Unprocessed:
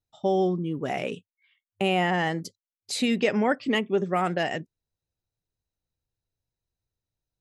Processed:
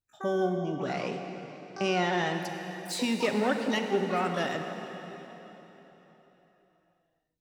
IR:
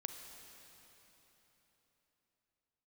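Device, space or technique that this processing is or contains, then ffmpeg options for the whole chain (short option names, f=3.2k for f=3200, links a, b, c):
shimmer-style reverb: -filter_complex "[0:a]asplit=2[a][b];[b]asetrate=88200,aresample=44100,atempo=0.5,volume=-10dB[c];[a][c]amix=inputs=2:normalize=0[d];[1:a]atrim=start_sample=2205[e];[d][e]afir=irnorm=-1:irlink=0,asettb=1/sr,asplit=3[f][g][h];[f]atrim=end=0.574[i];[g]atrim=start=0.57:end=2.34,asetpts=PTS-STARTPTS,afade=t=in:d=0.004:c=qsin,afade=t=out:st=1.766:d=0.004:c=qsin,lowpass=f=8.5k:w=0.5412,lowpass=f=8.5k:w=1.3066[j];[h]atrim=start=2.336[k];[i][j]acrossfade=d=0.004:c1=hsin:c2=qsin[l];[l][k]acrossfade=d=0.004:c1=qsin:c2=hsin,volume=-1.5dB"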